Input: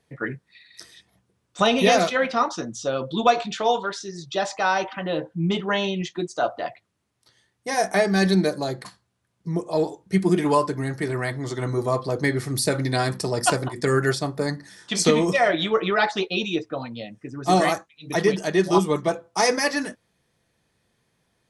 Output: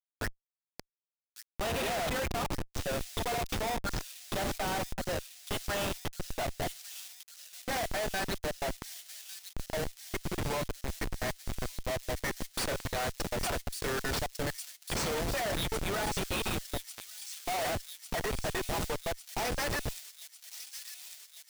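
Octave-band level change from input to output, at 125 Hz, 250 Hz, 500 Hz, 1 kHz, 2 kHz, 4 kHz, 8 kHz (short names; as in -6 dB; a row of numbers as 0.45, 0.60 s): -11.0, -15.5, -13.5, -12.0, -10.0, -8.0, -6.0 dB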